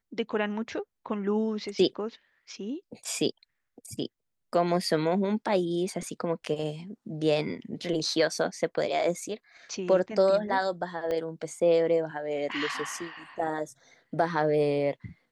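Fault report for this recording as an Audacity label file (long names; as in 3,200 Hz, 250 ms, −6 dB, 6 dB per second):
11.110000	11.110000	click −20 dBFS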